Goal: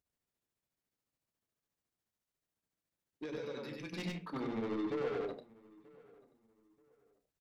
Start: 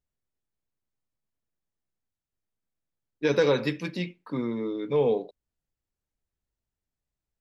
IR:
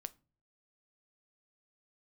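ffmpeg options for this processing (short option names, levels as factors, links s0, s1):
-filter_complex "[0:a]bandreject=f=60:t=h:w=6,bandreject=f=120:t=h:w=6,bandreject=f=180:t=h:w=6,bandreject=f=240:t=h:w=6,tremolo=f=14:d=0.89,alimiter=level_in=1.19:limit=0.0631:level=0:latency=1:release=26,volume=0.841,asettb=1/sr,asplit=3[s0][s1][s2];[s0]atrim=end=3.254[s3];[s1]atrim=start=3.25:end=3.93,asetpts=PTS-STARTPTS,afade=t=in:d=0.004:c=qsin,afade=t=out:st=0.676:d=0.004:c=qsin,acompressor=threshold=0.00562:ratio=6[s4];[s2]atrim=start=3.926[s5];[s3][s4]acrossfade=d=0.004:c1=hsin:c2=qsin[s6];[s6][s5]acrossfade=d=0.004:c1=qsin:c2=hsin,volume=47.3,asoftclip=hard,volume=0.0211,highpass=f=100:p=1,asoftclip=type=tanh:threshold=0.0119,asplit=2[s7][s8];[s8]adelay=32,volume=0.237[s9];[s7][s9]amix=inputs=2:normalize=0,asplit=2[s10][s11];[s11]adelay=933,lowpass=f=2500:p=1,volume=0.0668,asplit=2[s12][s13];[s13]adelay=933,lowpass=f=2500:p=1,volume=0.3[s14];[s10][s12][s14]amix=inputs=3:normalize=0,asplit=2[s15][s16];[1:a]atrim=start_sample=2205,adelay=97[s17];[s16][s17]afir=irnorm=-1:irlink=0,volume=1.33[s18];[s15][s18]amix=inputs=2:normalize=0,volume=1.41"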